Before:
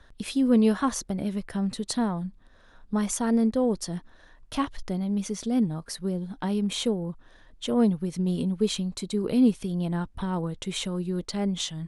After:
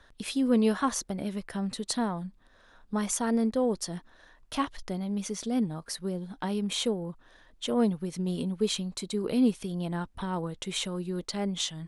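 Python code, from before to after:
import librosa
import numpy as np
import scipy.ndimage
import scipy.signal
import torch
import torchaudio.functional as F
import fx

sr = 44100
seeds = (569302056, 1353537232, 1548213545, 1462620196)

y = fx.low_shelf(x, sr, hz=270.0, db=-7.0)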